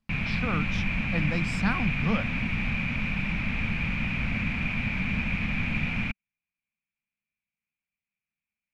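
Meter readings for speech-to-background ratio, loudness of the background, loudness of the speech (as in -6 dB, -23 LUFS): -3.0 dB, -28.5 LUFS, -31.5 LUFS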